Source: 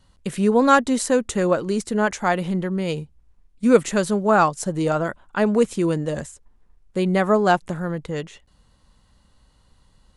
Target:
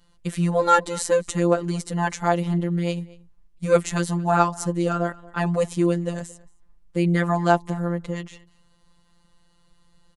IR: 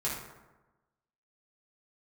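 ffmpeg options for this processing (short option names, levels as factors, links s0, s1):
-filter_complex "[0:a]afftfilt=real='hypot(re,im)*cos(PI*b)':imag='0':win_size=1024:overlap=0.75,asplit=2[s0][s1];[s1]adelay=227.4,volume=0.0794,highshelf=f=4000:g=-5.12[s2];[s0][s2]amix=inputs=2:normalize=0,volume=1.19"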